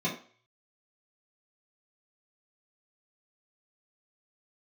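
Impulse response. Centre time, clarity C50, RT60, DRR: 23 ms, 8.0 dB, 0.45 s, -8.0 dB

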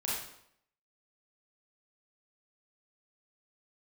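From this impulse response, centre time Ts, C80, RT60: 63 ms, 4.5 dB, 0.70 s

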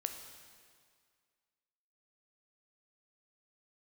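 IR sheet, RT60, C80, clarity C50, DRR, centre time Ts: 2.0 s, 8.0 dB, 7.0 dB, 5.5 dB, 34 ms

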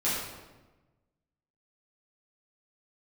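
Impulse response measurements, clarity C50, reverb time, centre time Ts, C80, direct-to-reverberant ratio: 0.0 dB, 1.2 s, 77 ms, 2.5 dB, -10.5 dB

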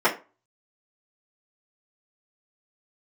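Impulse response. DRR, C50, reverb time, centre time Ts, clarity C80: -8.5 dB, 13.0 dB, 0.30 s, 16 ms, 18.5 dB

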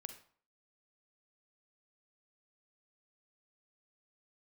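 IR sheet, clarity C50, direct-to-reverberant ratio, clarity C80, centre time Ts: 9.5 dB, 8.0 dB, 13.5 dB, 12 ms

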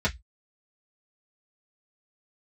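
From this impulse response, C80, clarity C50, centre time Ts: 35.5 dB, 22.5 dB, 9 ms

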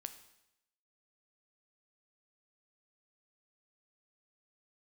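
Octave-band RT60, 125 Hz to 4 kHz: 0.85 s, 0.85 s, 0.85 s, 0.85 s, 0.85 s, 0.85 s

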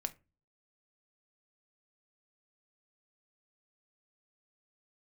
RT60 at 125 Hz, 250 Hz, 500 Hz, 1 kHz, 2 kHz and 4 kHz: 0.55 s, 0.45 s, 0.30 s, 0.25 s, 0.25 s, 0.15 s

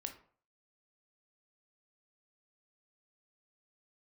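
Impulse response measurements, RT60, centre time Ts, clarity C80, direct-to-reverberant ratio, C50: 0.50 s, 12 ms, 15.5 dB, 5.0 dB, 10.5 dB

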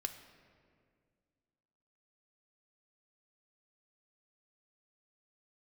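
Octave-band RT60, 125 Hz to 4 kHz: 2.5 s, 2.6 s, 2.2 s, 1.8 s, 1.7 s, 1.2 s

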